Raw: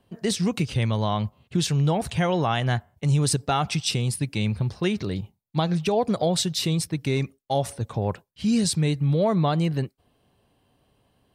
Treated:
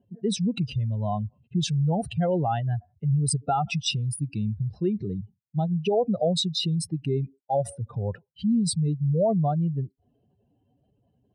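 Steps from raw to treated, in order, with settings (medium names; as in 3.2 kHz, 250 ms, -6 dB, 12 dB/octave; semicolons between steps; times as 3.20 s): spectral contrast enhancement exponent 2.3; comb of notches 1.1 kHz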